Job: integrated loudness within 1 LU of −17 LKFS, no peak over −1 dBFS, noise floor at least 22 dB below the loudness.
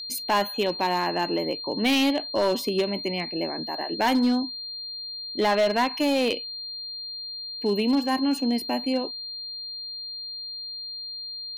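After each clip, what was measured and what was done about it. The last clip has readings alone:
share of clipped samples 1.2%; peaks flattened at −16.5 dBFS; interfering tone 4,200 Hz; level of the tone −33 dBFS; integrated loudness −26.0 LKFS; sample peak −16.5 dBFS; target loudness −17.0 LKFS
→ clipped peaks rebuilt −16.5 dBFS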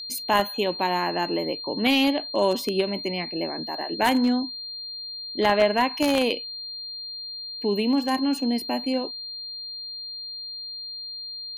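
share of clipped samples 0.0%; interfering tone 4,200 Hz; level of the tone −33 dBFS
→ notch filter 4,200 Hz, Q 30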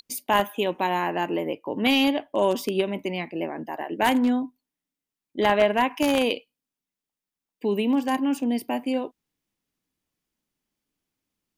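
interfering tone none found; integrated loudness −24.5 LKFS; sample peak −7.0 dBFS; target loudness −17.0 LKFS
→ level +7.5 dB
brickwall limiter −1 dBFS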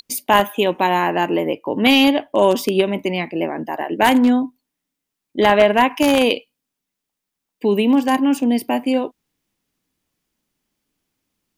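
integrated loudness −17.5 LKFS; sample peak −1.0 dBFS; background noise floor −82 dBFS

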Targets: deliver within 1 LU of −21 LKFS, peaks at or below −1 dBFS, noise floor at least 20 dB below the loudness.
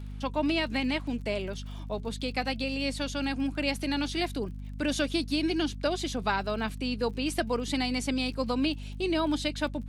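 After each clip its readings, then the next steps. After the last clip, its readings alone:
crackle rate 37 per second; mains hum 50 Hz; hum harmonics up to 250 Hz; level of the hum −36 dBFS; integrated loudness −30.5 LKFS; sample peak −14.0 dBFS; target loudness −21.0 LKFS
→ click removal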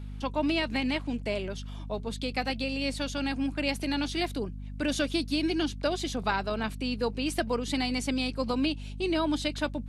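crackle rate 0.10 per second; mains hum 50 Hz; hum harmonics up to 250 Hz; level of the hum −36 dBFS
→ hum removal 50 Hz, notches 5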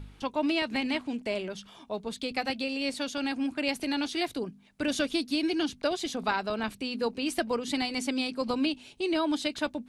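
mains hum none found; integrated loudness −30.5 LKFS; sample peak −14.0 dBFS; target loudness −21.0 LKFS
→ level +9.5 dB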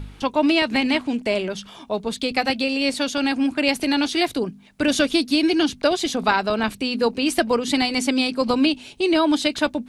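integrated loudness −21.0 LKFS; sample peak −4.5 dBFS; background noise floor −46 dBFS

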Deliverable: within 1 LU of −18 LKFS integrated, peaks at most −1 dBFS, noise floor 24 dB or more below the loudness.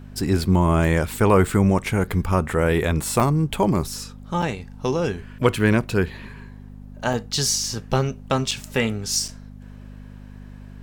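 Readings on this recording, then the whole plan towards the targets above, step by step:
number of dropouts 5; longest dropout 4.9 ms; mains hum 50 Hz; hum harmonics up to 250 Hz; level of the hum −40 dBFS; integrated loudness −22.0 LKFS; sample peak −4.0 dBFS; target loudness −18.0 LKFS
→ repair the gap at 0:03.20/0:04.42/0:07.13/0:08.51/0:09.28, 4.9 ms
hum removal 50 Hz, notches 5
level +4 dB
brickwall limiter −1 dBFS

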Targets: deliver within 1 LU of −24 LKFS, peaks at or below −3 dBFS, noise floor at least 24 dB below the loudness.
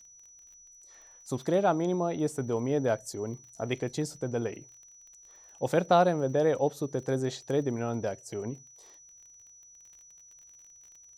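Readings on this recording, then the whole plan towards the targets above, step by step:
crackle rate 30 per second; interfering tone 5,900 Hz; level of the tone −52 dBFS; integrated loudness −30.0 LKFS; sample peak −10.0 dBFS; target loudness −24.0 LKFS
→ click removal
notch filter 5,900 Hz, Q 30
level +6 dB

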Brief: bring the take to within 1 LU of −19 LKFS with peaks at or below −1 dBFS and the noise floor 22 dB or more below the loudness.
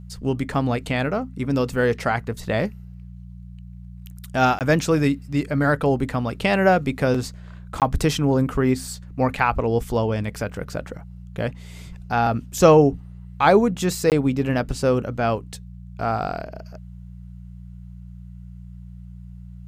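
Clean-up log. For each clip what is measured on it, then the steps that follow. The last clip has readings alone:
number of dropouts 3; longest dropout 18 ms; mains hum 60 Hz; hum harmonics up to 180 Hz; level of the hum −38 dBFS; integrated loudness −22.0 LKFS; sample peak −1.5 dBFS; target loudness −19.0 LKFS
→ repair the gap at 0:04.59/0:07.80/0:14.10, 18 ms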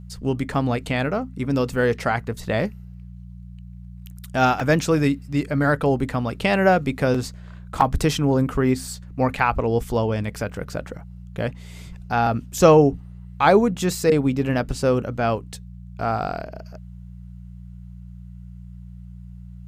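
number of dropouts 0; mains hum 60 Hz; hum harmonics up to 180 Hz; level of the hum −38 dBFS
→ hum removal 60 Hz, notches 3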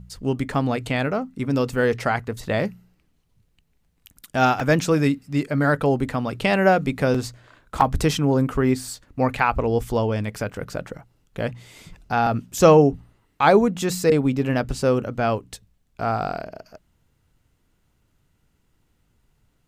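mains hum none found; integrated loudness −22.0 LKFS; sample peak −2.0 dBFS; target loudness −19.0 LKFS
→ level +3 dB
brickwall limiter −1 dBFS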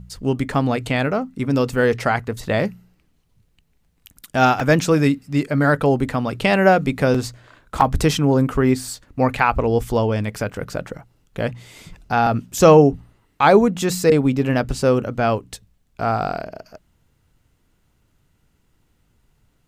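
integrated loudness −19.0 LKFS; sample peak −1.0 dBFS; background noise floor −64 dBFS

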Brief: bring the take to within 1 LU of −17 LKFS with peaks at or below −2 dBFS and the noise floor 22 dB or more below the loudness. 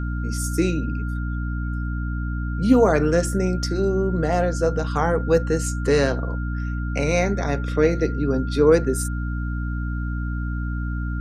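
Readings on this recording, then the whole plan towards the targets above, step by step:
mains hum 60 Hz; hum harmonics up to 300 Hz; level of the hum −23 dBFS; interfering tone 1,400 Hz; level of the tone −36 dBFS; integrated loudness −22.5 LKFS; sample peak −4.0 dBFS; target loudness −17.0 LKFS
→ mains-hum notches 60/120/180/240/300 Hz
notch filter 1,400 Hz, Q 30
level +5.5 dB
brickwall limiter −2 dBFS

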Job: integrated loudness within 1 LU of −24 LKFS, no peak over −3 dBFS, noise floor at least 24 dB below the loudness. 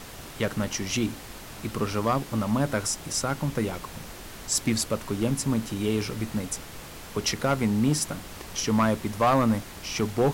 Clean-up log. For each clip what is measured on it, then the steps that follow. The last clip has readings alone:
share of clipped samples 0.5%; peaks flattened at −15.5 dBFS; background noise floor −42 dBFS; target noise floor −51 dBFS; integrated loudness −27.0 LKFS; sample peak −15.5 dBFS; target loudness −24.0 LKFS
→ clipped peaks rebuilt −15.5 dBFS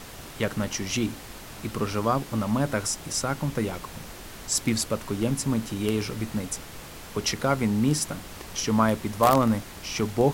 share of clipped samples 0.0%; background noise floor −42 dBFS; target noise floor −51 dBFS
→ noise reduction from a noise print 9 dB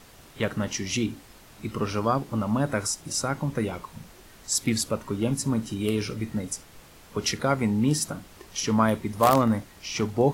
background noise floor −51 dBFS; integrated loudness −27.0 LKFS; sample peak −6.5 dBFS; target loudness −24.0 LKFS
→ level +3 dB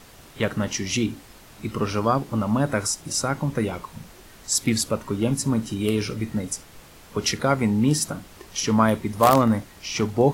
integrated loudness −24.0 LKFS; sample peak −3.5 dBFS; background noise floor −48 dBFS

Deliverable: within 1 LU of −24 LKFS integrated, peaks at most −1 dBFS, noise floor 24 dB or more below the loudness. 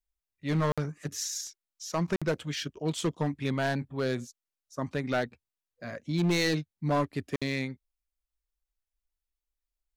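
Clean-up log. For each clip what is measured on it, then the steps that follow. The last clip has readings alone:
share of clipped samples 1.5%; peaks flattened at −21.5 dBFS; number of dropouts 3; longest dropout 56 ms; integrated loudness −31.5 LKFS; sample peak −21.5 dBFS; target loudness −24.0 LKFS
→ clipped peaks rebuilt −21.5 dBFS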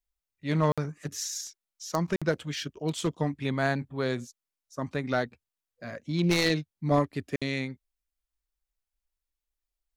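share of clipped samples 0.0%; number of dropouts 3; longest dropout 56 ms
→ repair the gap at 0:00.72/0:02.16/0:07.36, 56 ms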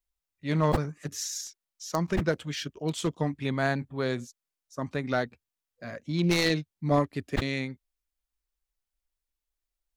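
number of dropouts 0; integrated loudness −30.0 LKFS; sample peak −12.0 dBFS; target loudness −24.0 LKFS
→ level +6 dB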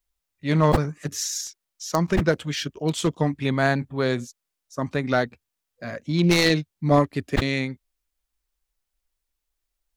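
integrated loudness −24.0 LKFS; sample peak −6.0 dBFS; background noise floor −83 dBFS

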